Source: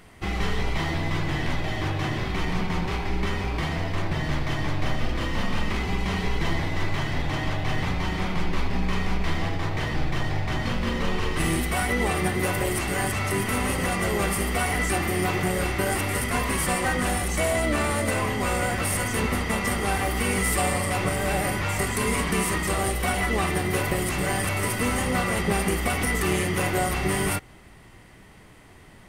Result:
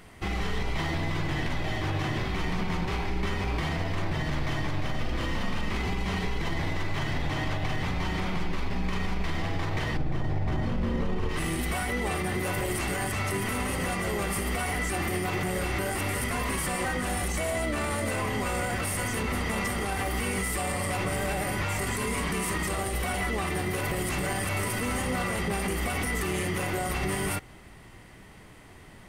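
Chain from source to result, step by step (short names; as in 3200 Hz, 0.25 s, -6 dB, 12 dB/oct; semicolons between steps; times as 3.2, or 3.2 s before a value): 9.97–11.29 tilt shelf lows +6.5 dB, about 1100 Hz; limiter -20.5 dBFS, peak gain reduction 11.5 dB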